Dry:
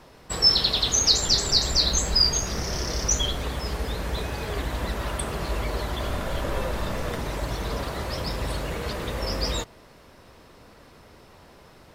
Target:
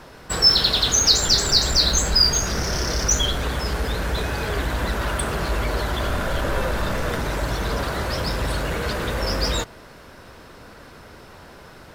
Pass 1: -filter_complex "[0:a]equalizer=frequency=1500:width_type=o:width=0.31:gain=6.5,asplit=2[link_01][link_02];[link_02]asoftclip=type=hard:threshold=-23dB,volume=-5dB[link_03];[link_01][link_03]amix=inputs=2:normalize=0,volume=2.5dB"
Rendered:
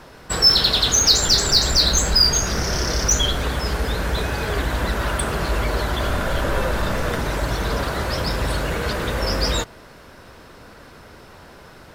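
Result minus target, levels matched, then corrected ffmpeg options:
hard clipping: distortion −5 dB
-filter_complex "[0:a]equalizer=frequency=1500:width_type=o:width=0.31:gain=6.5,asplit=2[link_01][link_02];[link_02]asoftclip=type=hard:threshold=-32.5dB,volume=-5dB[link_03];[link_01][link_03]amix=inputs=2:normalize=0,volume=2.5dB"

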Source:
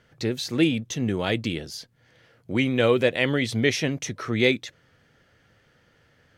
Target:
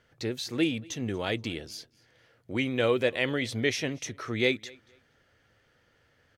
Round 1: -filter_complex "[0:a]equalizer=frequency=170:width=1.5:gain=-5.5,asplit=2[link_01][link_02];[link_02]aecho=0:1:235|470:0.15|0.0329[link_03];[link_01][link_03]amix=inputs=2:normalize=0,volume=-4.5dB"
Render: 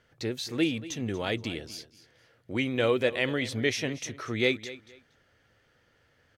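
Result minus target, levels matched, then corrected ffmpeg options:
echo-to-direct +8.5 dB
-filter_complex "[0:a]equalizer=frequency=170:width=1.5:gain=-5.5,asplit=2[link_01][link_02];[link_02]aecho=0:1:235|470:0.0562|0.0124[link_03];[link_01][link_03]amix=inputs=2:normalize=0,volume=-4.5dB"

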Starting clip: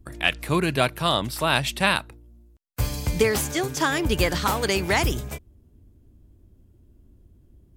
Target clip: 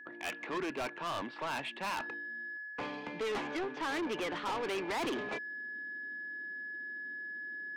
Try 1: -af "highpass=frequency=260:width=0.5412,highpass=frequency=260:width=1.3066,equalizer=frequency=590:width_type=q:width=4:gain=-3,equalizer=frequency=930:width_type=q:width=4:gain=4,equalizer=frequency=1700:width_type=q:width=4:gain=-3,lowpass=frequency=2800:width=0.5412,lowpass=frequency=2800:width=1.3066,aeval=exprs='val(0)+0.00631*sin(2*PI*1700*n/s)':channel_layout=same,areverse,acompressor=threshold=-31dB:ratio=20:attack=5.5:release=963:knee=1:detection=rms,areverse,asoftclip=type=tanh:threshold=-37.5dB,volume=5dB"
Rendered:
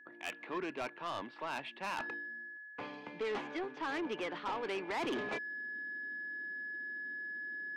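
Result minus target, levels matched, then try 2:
downward compressor: peak gain reduction +6.5 dB
-af "highpass=frequency=260:width=0.5412,highpass=frequency=260:width=1.3066,equalizer=frequency=590:width_type=q:width=4:gain=-3,equalizer=frequency=930:width_type=q:width=4:gain=4,equalizer=frequency=1700:width_type=q:width=4:gain=-3,lowpass=frequency=2800:width=0.5412,lowpass=frequency=2800:width=1.3066,aeval=exprs='val(0)+0.00631*sin(2*PI*1700*n/s)':channel_layout=same,areverse,acompressor=threshold=-24dB:ratio=20:attack=5.5:release=963:knee=1:detection=rms,areverse,asoftclip=type=tanh:threshold=-37.5dB,volume=5dB"

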